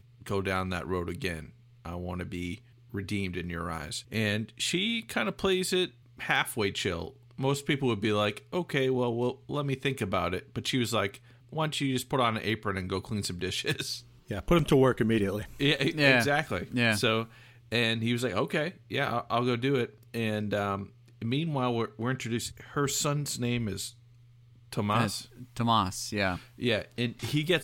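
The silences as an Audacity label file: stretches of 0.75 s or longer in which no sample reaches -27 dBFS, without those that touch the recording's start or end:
23.850000	24.730000	silence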